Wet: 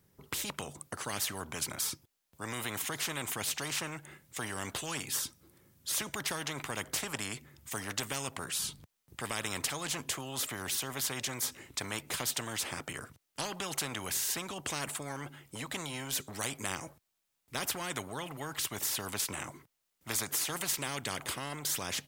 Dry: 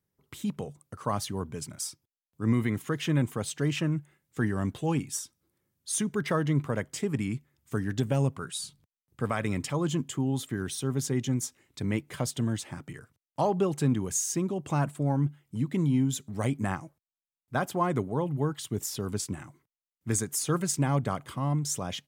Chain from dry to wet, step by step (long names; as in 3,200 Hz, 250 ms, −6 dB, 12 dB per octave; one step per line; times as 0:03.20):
every bin compressed towards the loudest bin 4 to 1
level −1.5 dB